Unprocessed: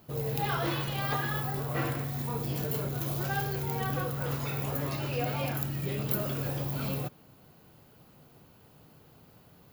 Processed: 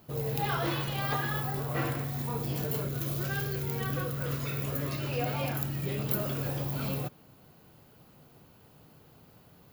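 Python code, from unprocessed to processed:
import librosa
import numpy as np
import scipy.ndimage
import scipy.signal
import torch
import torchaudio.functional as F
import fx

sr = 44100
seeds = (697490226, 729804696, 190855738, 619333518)

y = fx.peak_eq(x, sr, hz=830.0, db=-13.0, octaves=0.37, at=(2.83, 5.07))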